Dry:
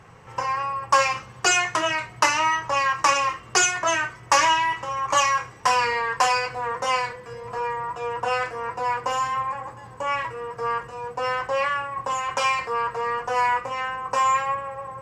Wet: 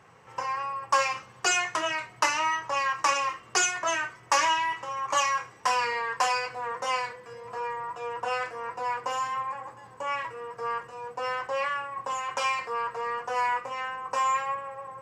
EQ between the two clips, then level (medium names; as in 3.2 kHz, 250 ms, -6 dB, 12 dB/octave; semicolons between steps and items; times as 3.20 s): high-pass 230 Hz 6 dB/octave; -5.0 dB